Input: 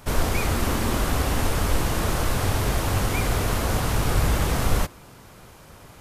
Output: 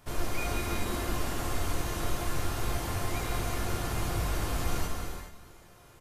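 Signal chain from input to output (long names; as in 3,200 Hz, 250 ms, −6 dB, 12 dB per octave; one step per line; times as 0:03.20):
tuned comb filter 350 Hz, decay 0.3 s, harmonics all, mix 80%
on a send: single-tap delay 429 ms −18.5 dB
on the sum: reverb whose tail is shaped and stops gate 450 ms flat, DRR 0.5 dB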